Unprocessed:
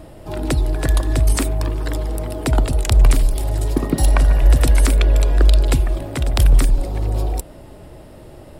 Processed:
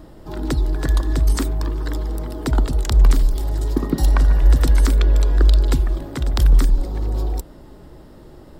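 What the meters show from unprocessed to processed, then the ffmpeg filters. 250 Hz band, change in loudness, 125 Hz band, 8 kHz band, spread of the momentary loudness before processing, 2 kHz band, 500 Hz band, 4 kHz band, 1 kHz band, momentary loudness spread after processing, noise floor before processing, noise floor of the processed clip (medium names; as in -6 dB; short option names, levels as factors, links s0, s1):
-1.0 dB, -1.5 dB, -1.5 dB, -6.5 dB, 9 LU, -4.0 dB, -4.0 dB, -3.5 dB, -3.5 dB, 10 LU, -40 dBFS, -43 dBFS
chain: -af "equalizer=f=100:t=o:w=0.67:g=-8,equalizer=f=630:t=o:w=0.67:g=-8,equalizer=f=2500:t=o:w=0.67:g=-9,equalizer=f=10000:t=o:w=0.67:g=-11"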